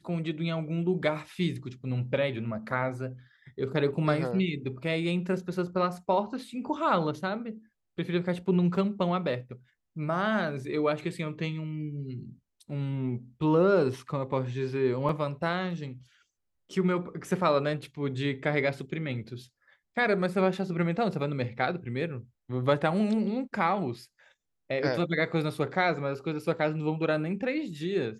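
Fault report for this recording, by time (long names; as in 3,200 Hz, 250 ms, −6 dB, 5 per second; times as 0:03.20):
0:15.09: drop-out 2.3 ms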